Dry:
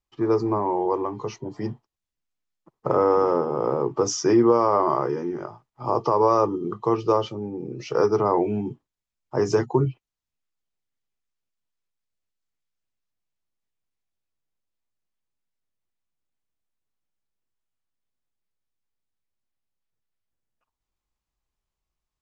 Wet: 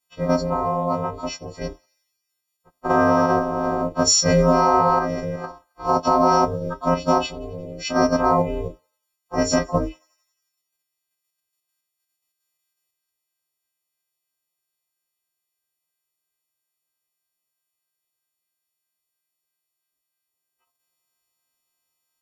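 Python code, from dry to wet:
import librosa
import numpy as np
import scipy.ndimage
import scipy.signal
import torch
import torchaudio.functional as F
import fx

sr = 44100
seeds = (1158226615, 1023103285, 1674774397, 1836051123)

p1 = fx.freq_snap(x, sr, grid_st=4)
p2 = scipy.signal.sosfilt(scipy.signal.butter(2, 150.0, 'highpass', fs=sr, output='sos'), p1)
p3 = fx.level_steps(p2, sr, step_db=10)
p4 = p2 + (p3 * 10.0 ** (-1.5 / 20.0))
p5 = fx.quant_float(p4, sr, bits=6)
p6 = p5 * np.sin(2.0 * np.pi * 180.0 * np.arange(len(p5)) / sr)
y = fx.echo_thinned(p6, sr, ms=89, feedback_pct=71, hz=1200.0, wet_db=-24.0)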